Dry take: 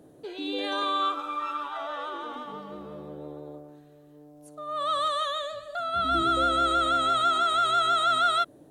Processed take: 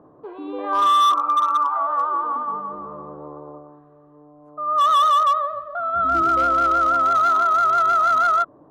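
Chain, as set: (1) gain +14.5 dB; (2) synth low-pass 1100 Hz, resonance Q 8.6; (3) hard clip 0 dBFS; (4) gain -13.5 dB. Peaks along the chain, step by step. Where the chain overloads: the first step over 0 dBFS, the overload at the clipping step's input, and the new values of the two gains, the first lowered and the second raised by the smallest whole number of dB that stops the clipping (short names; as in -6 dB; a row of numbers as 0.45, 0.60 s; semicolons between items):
-1.0, +8.5, 0.0, -13.5 dBFS; step 2, 8.5 dB; step 1 +5.5 dB, step 4 -4.5 dB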